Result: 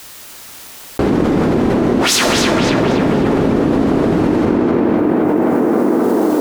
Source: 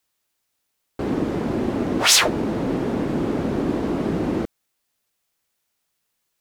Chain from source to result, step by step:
tape delay 263 ms, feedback 68%, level −5 dB, low-pass 3,100 Hz
convolution reverb RT60 1.8 s, pre-delay 18 ms, DRR 5.5 dB
envelope flattener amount 100%
level −1 dB

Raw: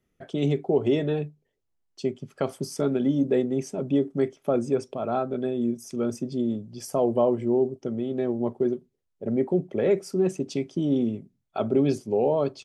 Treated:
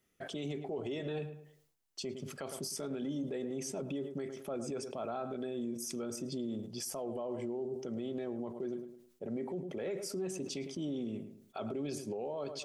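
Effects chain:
feedback echo with a low-pass in the loop 107 ms, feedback 21%, low-pass 2,300 Hz, level −15 dB
downward compressor 2 to 1, threshold −32 dBFS, peak gain reduction 8.5 dB
spectral tilt +2 dB per octave
brickwall limiter −30.5 dBFS, peak gain reduction 11 dB
level that may fall only so fast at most 81 dB per second

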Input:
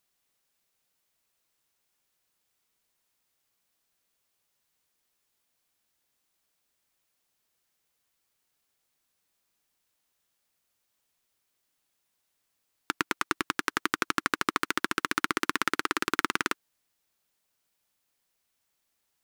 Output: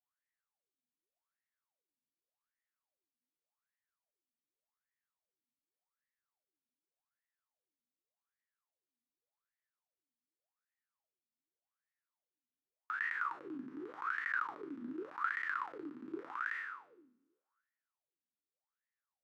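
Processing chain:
peak hold with a decay on every bin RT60 1.26 s
parametric band 140 Hz +12.5 dB 0.32 octaves
LFO wah 0.86 Hz 240–1,900 Hz, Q 15
level −2 dB

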